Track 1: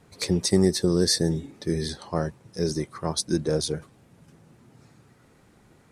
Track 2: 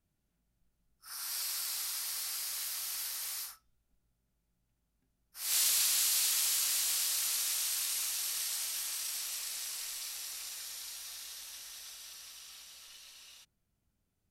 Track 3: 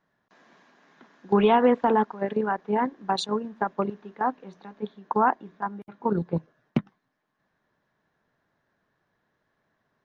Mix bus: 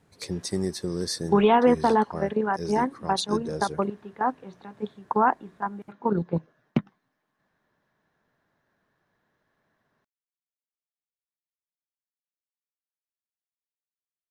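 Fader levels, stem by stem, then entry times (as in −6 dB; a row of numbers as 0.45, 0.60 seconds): −8.0 dB, muted, +0.5 dB; 0.00 s, muted, 0.00 s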